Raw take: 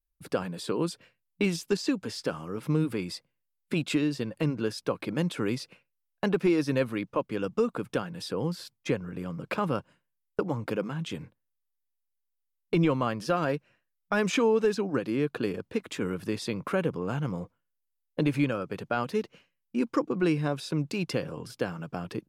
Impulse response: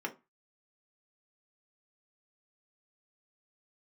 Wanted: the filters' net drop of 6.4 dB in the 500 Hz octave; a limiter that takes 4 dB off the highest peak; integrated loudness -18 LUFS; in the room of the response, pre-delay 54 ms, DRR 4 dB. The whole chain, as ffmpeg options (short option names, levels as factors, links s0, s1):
-filter_complex "[0:a]equalizer=f=500:t=o:g=-8,alimiter=limit=0.0944:level=0:latency=1,asplit=2[s0][s1];[1:a]atrim=start_sample=2205,adelay=54[s2];[s1][s2]afir=irnorm=-1:irlink=0,volume=0.422[s3];[s0][s3]amix=inputs=2:normalize=0,volume=5.01"